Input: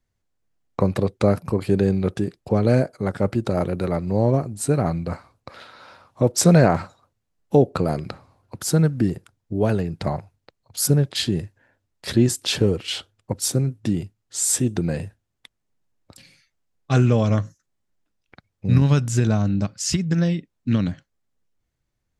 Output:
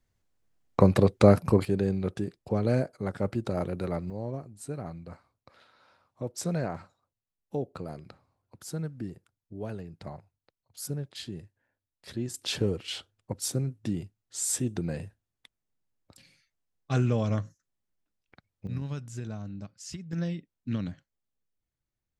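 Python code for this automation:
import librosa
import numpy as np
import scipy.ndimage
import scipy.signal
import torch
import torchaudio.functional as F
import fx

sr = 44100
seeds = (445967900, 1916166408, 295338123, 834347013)

y = fx.gain(x, sr, db=fx.steps((0.0, 0.5), (1.65, -8.0), (4.1, -16.5), (12.34, -8.5), (18.67, -18.0), (20.13, -11.0)))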